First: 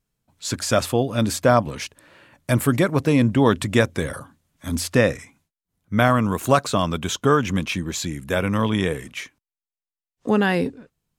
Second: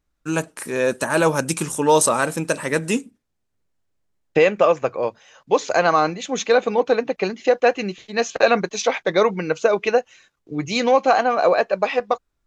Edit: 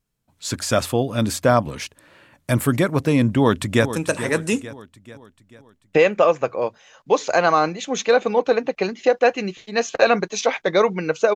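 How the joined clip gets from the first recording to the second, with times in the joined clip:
first
3.38–3.93 echo throw 0.44 s, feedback 50%, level -12 dB
3.93 switch to second from 2.34 s

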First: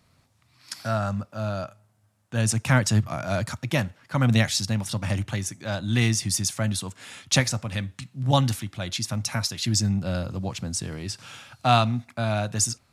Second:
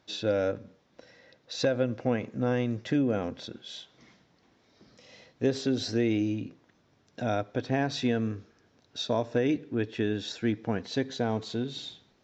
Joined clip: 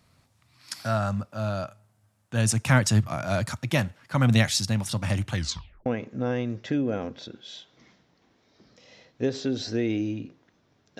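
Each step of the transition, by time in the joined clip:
first
5.33 tape stop 0.53 s
5.86 switch to second from 2.07 s

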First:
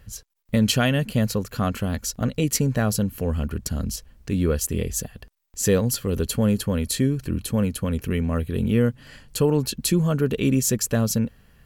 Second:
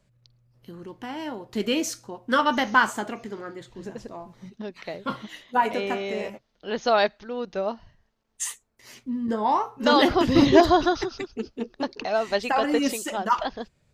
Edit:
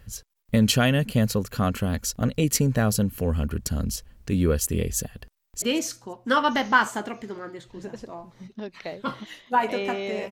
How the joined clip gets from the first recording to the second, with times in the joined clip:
first
5.29–5.62 echo throw 0.17 s, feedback 45%, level -18 dB
5.62 switch to second from 1.64 s

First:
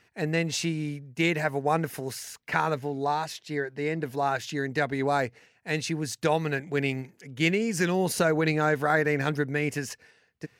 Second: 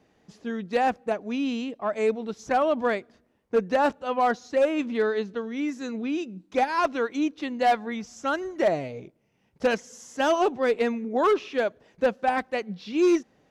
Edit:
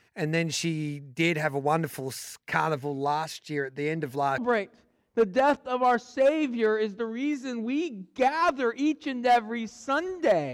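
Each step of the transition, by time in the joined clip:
first
4.38 switch to second from 2.74 s

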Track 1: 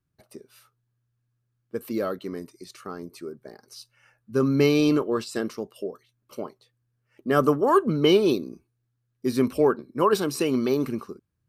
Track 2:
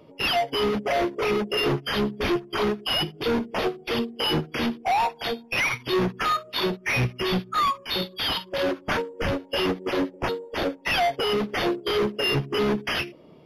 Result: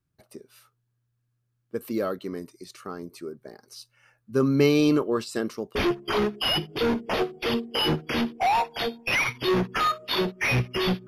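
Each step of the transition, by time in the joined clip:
track 1
5.75 switch to track 2 from 2.2 s

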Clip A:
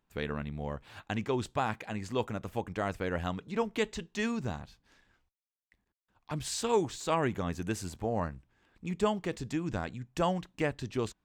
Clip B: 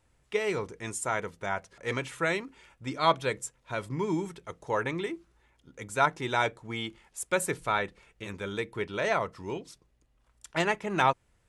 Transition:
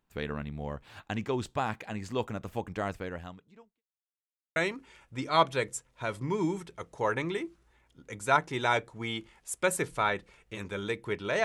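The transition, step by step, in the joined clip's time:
clip A
2.86–3.83 fade out quadratic
3.83–4.56 mute
4.56 switch to clip B from 2.25 s

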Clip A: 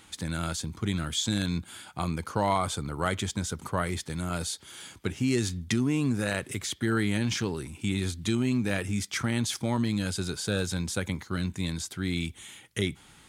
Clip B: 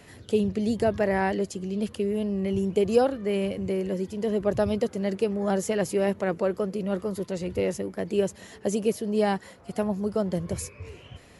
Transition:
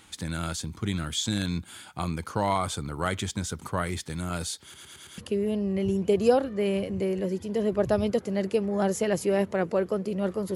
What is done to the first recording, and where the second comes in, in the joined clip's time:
clip A
4.63 stutter in place 0.11 s, 5 plays
5.18 switch to clip B from 1.86 s

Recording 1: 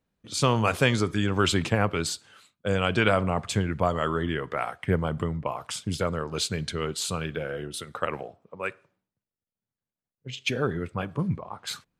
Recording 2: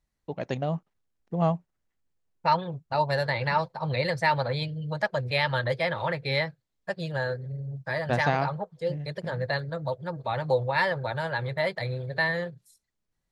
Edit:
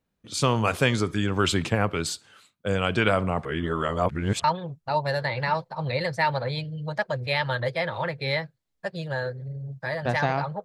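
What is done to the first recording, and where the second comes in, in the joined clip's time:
recording 1
3.45–4.44 reverse
4.44 switch to recording 2 from 2.48 s

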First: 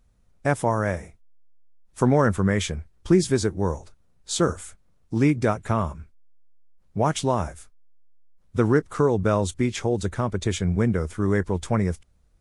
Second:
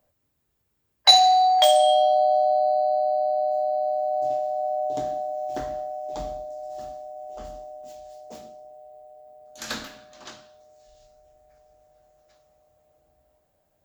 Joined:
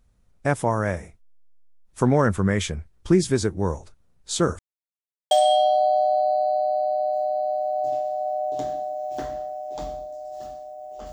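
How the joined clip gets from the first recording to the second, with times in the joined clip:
first
4.59–5.31 mute
5.31 switch to second from 1.69 s

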